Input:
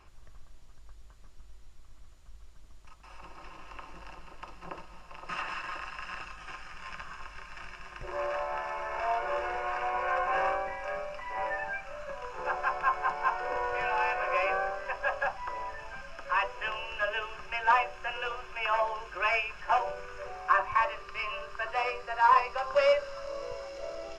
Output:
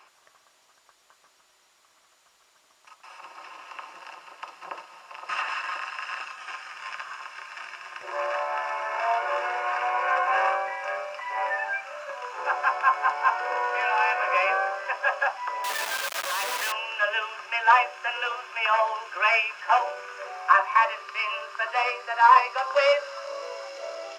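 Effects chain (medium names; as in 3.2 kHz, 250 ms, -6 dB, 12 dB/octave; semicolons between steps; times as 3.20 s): 15.64–16.72 s: one-bit comparator; high-pass 660 Hz 12 dB/octave; trim +7 dB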